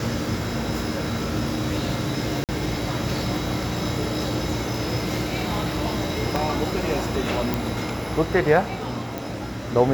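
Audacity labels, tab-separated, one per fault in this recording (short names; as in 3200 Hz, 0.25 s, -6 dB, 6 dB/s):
2.440000	2.490000	gap 48 ms
6.360000	6.360000	pop
7.540000	7.540000	pop
9.180000	9.180000	pop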